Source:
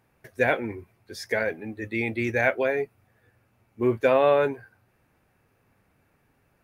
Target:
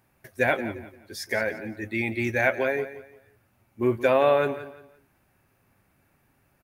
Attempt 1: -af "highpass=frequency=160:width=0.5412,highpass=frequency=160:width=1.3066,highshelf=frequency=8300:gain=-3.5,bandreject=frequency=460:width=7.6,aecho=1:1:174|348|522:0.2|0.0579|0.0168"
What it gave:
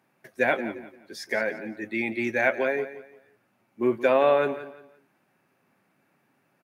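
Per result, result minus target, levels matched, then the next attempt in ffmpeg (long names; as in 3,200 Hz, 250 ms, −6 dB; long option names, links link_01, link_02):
125 Hz band −9.0 dB; 8,000 Hz band −4.5 dB
-af "highshelf=frequency=8300:gain=-3.5,bandreject=frequency=460:width=7.6,aecho=1:1:174|348|522:0.2|0.0579|0.0168"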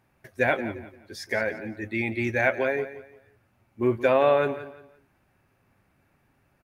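8,000 Hz band −4.5 dB
-af "highshelf=frequency=8300:gain=7.5,bandreject=frequency=460:width=7.6,aecho=1:1:174|348|522:0.2|0.0579|0.0168"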